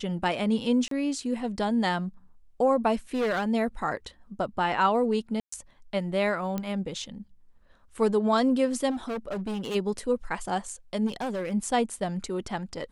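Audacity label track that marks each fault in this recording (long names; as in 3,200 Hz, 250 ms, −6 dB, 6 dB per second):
0.880000	0.910000	drop-out 33 ms
3.140000	3.450000	clipping −23 dBFS
5.400000	5.520000	drop-out 124 ms
6.580000	6.580000	click −17 dBFS
8.900000	9.760000	clipping −28.5 dBFS
11.060000	11.530000	clipping −27.5 dBFS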